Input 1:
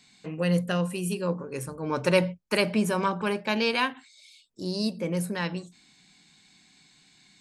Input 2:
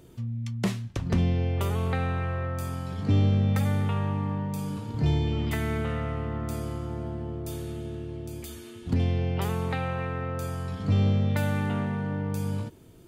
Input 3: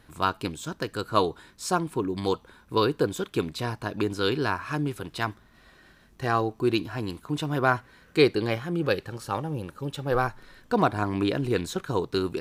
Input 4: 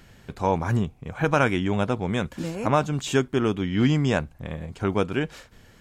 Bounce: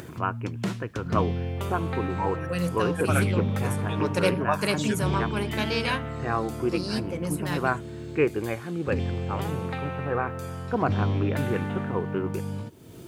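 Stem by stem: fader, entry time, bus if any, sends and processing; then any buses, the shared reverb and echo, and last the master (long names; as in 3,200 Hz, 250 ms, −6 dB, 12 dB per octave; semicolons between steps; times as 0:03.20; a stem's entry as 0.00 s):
−3.0 dB, 2.10 s, no send, high-shelf EQ 8,800 Hz +10.5 dB
−2.0 dB, 0.00 s, no send, bit reduction 11 bits
−3.0 dB, 0.00 s, no send, Butterworth low-pass 2,700 Hz 72 dB per octave
0.0 dB, 1.75 s, no send, spectral dynamics exaggerated over time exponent 3; high-pass filter 570 Hz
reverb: not used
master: high-pass filter 81 Hz; upward compression, threshold −31 dBFS; highs frequency-modulated by the lows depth 0.15 ms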